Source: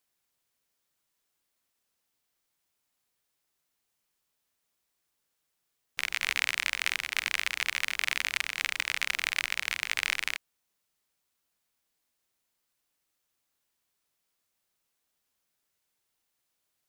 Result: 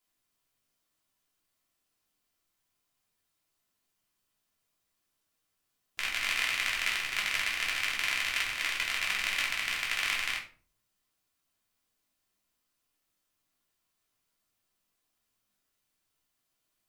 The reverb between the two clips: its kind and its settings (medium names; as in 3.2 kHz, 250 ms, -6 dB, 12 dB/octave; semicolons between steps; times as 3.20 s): simulated room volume 300 m³, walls furnished, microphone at 3.1 m; trim -5 dB